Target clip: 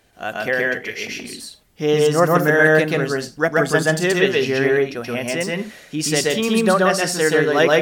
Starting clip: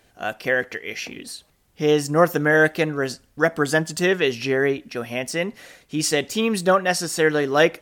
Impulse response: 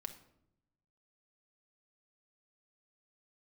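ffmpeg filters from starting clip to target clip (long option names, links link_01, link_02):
-filter_complex "[0:a]asplit=2[link_01][link_02];[1:a]atrim=start_sample=2205,atrim=end_sample=3969,adelay=128[link_03];[link_02][link_03]afir=irnorm=-1:irlink=0,volume=4dB[link_04];[link_01][link_04]amix=inputs=2:normalize=0"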